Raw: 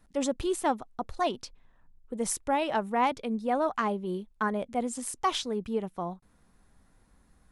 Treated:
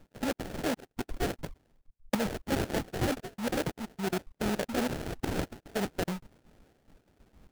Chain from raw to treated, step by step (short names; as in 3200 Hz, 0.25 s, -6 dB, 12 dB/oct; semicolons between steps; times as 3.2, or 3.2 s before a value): random spectral dropouts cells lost 58%; 5.39–5.89 high shelf 6400 Hz +9 dB; in parallel at +3 dB: negative-ratio compressor -35 dBFS, ratio -1; 3.7–4.11 on the sum: spectral gain 420–6100 Hz -20 dB; transient shaper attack -1 dB, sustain +6 dB; de-esser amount 45%; sample-rate reducer 1100 Hz, jitter 20%; 1.41–2.15 three-band expander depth 100%; gain -3.5 dB